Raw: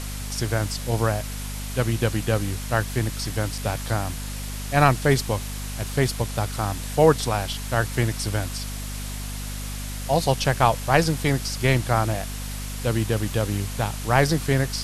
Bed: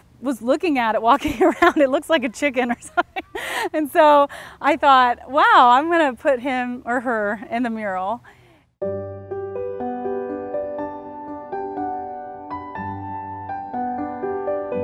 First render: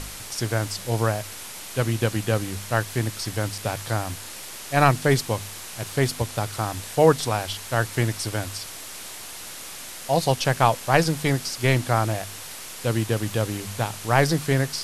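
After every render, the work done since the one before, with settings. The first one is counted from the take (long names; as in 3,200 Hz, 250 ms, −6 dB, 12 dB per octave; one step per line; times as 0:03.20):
hum removal 50 Hz, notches 5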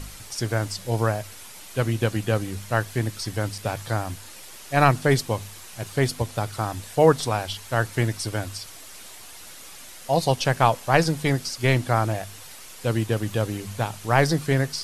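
broadband denoise 7 dB, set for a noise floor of −38 dBFS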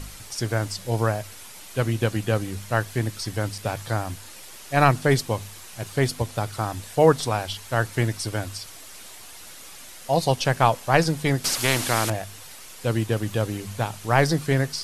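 0:11.44–0:12.10: every bin compressed towards the loudest bin 2 to 1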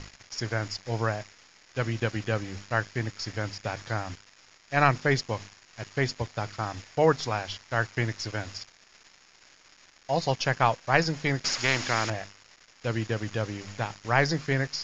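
centre clipping without the shift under −35.5 dBFS
Chebyshev low-pass with heavy ripple 7,000 Hz, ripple 6 dB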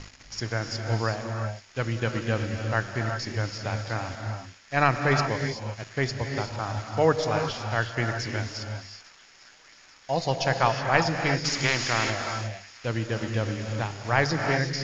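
delay with a high-pass on its return 846 ms, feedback 73%, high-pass 2,000 Hz, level −21 dB
reverb whose tail is shaped and stops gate 400 ms rising, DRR 4 dB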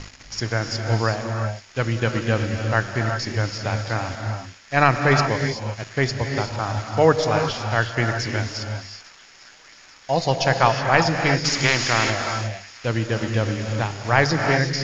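level +5.5 dB
brickwall limiter −1 dBFS, peak gain reduction 2 dB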